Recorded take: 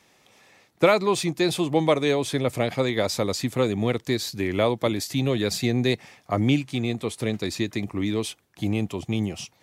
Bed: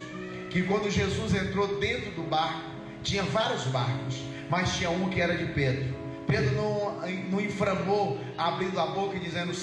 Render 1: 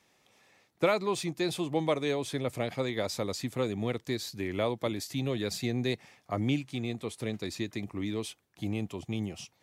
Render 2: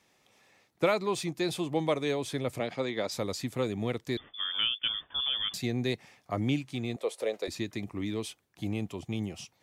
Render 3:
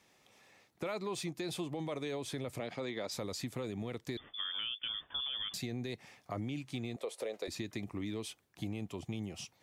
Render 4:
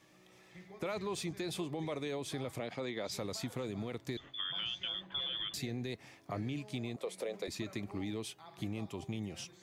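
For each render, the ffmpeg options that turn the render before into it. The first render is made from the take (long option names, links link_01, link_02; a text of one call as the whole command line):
ffmpeg -i in.wav -af "volume=-8dB" out.wav
ffmpeg -i in.wav -filter_complex "[0:a]asplit=3[link_01][link_02][link_03];[link_01]afade=type=out:start_time=2.59:duration=0.02[link_04];[link_02]highpass=160,lowpass=6600,afade=type=in:start_time=2.59:duration=0.02,afade=type=out:start_time=3.1:duration=0.02[link_05];[link_03]afade=type=in:start_time=3.1:duration=0.02[link_06];[link_04][link_05][link_06]amix=inputs=3:normalize=0,asettb=1/sr,asplit=3[link_07][link_08][link_09];[link_07]atrim=end=4.174[link_10];[link_08]atrim=start=4.17:end=5.54,asetpts=PTS-STARTPTS,afade=type=in:duration=0.004:curve=qsin,afade=type=out:start_time=1.366:duration=0.004:curve=qsin,lowpass=frequency=3100:width_type=q:width=0.5098,lowpass=frequency=3100:width_type=q:width=0.6013,lowpass=frequency=3100:width_type=q:width=0.9,lowpass=frequency=3100:width_type=q:width=2.563,afreqshift=-3600[link_11];[link_09]atrim=start=5.536[link_12];[link_10][link_11]acrossfade=duration=0.004:curve1=hsin:curve2=qsin[link_13];[link_13][link_12]acrossfade=duration=0.004:curve1=qsin:curve2=hsin,asettb=1/sr,asplit=3[link_14][link_15][link_16];[link_14]atrim=end=6.964[link_17];[link_15]atrim=start=6.96:end=7.48,asetpts=PTS-STARTPTS,afade=type=in:duration=0.004:curve=qsin,afade=type=out:start_time=0.516:duration=0.004:curve=qsin,highpass=frequency=530:width_type=q:width=4.3[link_18];[link_16]atrim=start=7.476[link_19];[link_17][link_18]acrossfade=duration=0.004:curve1=hsin:curve2=qsin[link_20];[link_20][link_19]acrossfade=duration=0.004:curve1=qsin:curve2=hsin" out.wav
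ffmpeg -i in.wav -af "alimiter=limit=-24dB:level=0:latency=1:release=21,acompressor=threshold=-37dB:ratio=3" out.wav
ffmpeg -i in.wav -i bed.wav -filter_complex "[1:a]volume=-27dB[link_01];[0:a][link_01]amix=inputs=2:normalize=0" out.wav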